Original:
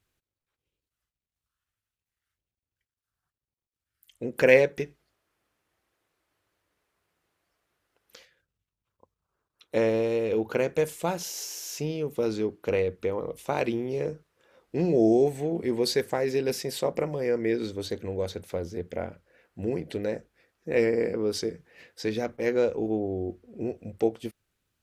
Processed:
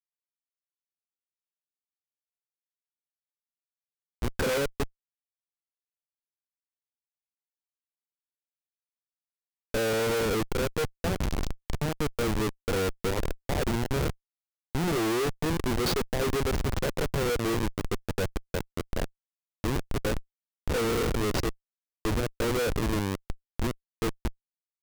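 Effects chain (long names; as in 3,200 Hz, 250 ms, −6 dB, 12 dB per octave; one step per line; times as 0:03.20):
comparator with hysteresis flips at −27.5 dBFS
level +3.5 dB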